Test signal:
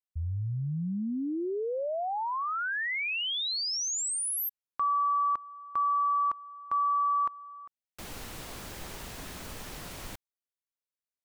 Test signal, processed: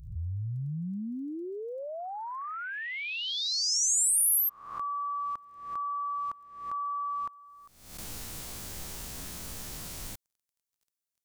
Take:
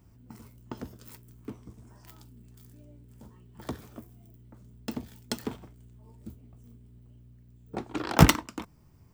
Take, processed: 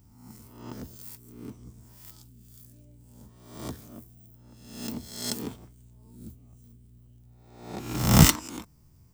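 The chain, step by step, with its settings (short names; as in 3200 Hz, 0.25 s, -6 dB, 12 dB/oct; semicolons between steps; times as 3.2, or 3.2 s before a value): spectral swells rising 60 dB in 0.74 s; crackle 16/s -58 dBFS; tone controls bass +5 dB, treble +10 dB; gain -6.5 dB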